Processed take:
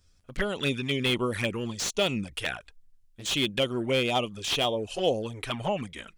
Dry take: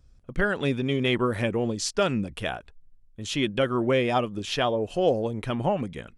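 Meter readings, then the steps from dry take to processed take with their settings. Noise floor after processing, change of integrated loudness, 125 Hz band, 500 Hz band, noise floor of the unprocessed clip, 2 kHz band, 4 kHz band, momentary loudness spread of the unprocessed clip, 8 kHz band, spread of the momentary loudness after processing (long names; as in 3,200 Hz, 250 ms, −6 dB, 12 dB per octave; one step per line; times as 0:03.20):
−62 dBFS, −2.0 dB, −4.0 dB, −4.0 dB, −55 dBFS, −1.0 dB, +4.0 dB, 8 LU, +1.5 dB, 8 LU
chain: tilt shelving filter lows −7 dB, about 1,300 Hz
flanger swept by the level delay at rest 11.8 ms, full sweep at −24 dBFS
slew-rate limiting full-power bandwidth 150 Hz
level +3 dB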